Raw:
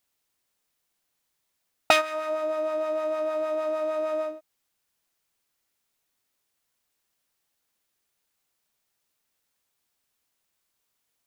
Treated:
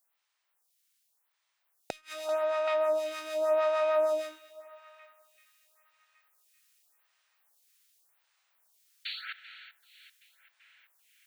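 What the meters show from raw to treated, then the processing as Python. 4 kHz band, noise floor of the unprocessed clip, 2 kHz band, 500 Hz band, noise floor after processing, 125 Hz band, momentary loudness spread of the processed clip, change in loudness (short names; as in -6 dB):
-6.0 dB, -78 dBFS, -7.5 dB, -1.0 dB, -79 dBFS, n/a, 17 LU, -3.5 dB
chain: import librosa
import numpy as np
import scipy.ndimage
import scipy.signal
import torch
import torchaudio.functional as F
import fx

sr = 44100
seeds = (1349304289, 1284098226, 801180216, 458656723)

p1 = scipy.signal.sosfilt(scipy.signal.butter(2, 800.0, 'highpass', fs=sr, output='sos'), x)
p2 = fx.dynamic_eq(p1, sr, hz=1200.0, q=0.74, threshold_db=-37.0, ratio=4.0, max_db=-5)
p3 = fx.rider(p2, sr, range_db=3, speed_s=2.0)
p4 = fx.spec_paint(p3, sr, seeds[0], shape='noise', start_s=9.05, length_s=0.28, low_hz=1300.0, high_hz=4500.0, level_db=-39.0)
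p5 = p4 + fx.echo_banded(p4, sr, ms=386, feedback_pct=69, hz=2100.0, wet_db=-16, dry=0)
p6 = fx.rev_spring(p5, sr, rt60_s=1.8, pass_ms=(34, 59), chirp_ms=70, drr_db=17.5)
p7 = fx.gate_flip(p6, sr, shuts_db=-17.0, range_db=-31)
p8 = fx.stagger_phaser(p7, sr, hz=0.87)
y = F.gain(torch.from_numpy(p8), 7.0).numpy()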